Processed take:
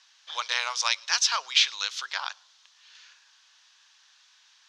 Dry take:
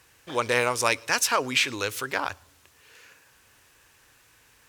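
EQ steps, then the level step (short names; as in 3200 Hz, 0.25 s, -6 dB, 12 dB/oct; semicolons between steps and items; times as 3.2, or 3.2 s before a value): HPF 870 Hz 24 dB/oct; air absorption 110 m; band shelf 4600 Hz +13 dB 1.3 oct; -3.0 dB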